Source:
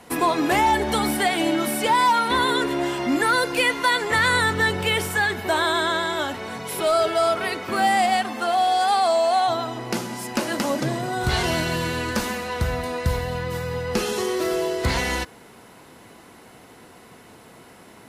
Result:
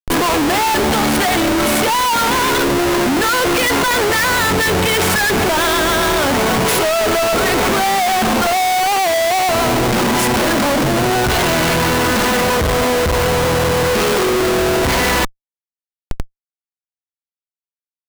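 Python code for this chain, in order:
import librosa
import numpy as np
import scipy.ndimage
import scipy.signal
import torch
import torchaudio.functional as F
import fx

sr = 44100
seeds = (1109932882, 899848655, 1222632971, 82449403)

p1 = fx.peak_eq(x, sr, hz=84.0, db=-5.0, octaves=2.2)
p2 = fx.over_compress(p1, sr, threshold_db=-32.0, ratio=-1.0)
p3 = p1 + (p2 * librosa.db_to_amplitude(-1.0))
p4 = fx.schmitt(p3, sr, flips_db=-26.5)
y = p4 * librosa.db_to_amplitude(6.5)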